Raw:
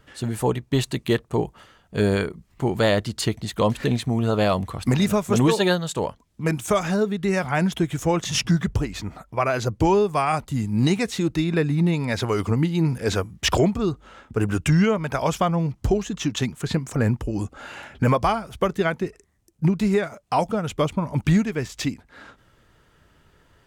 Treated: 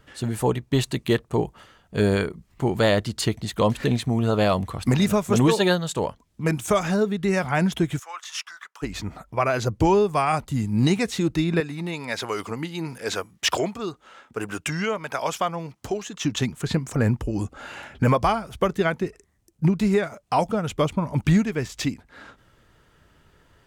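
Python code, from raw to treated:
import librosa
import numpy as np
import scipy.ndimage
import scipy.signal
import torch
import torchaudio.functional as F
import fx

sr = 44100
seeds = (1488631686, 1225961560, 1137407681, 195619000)

y = fx.ladder_highpass(x, sr, hz=1000.0, resonance_pct=45, at=(7.98, 8.82), fade=0.02)
y = fx.highpass(y, sr, hz=650.0, slope=6, at=(11.6, 16.25))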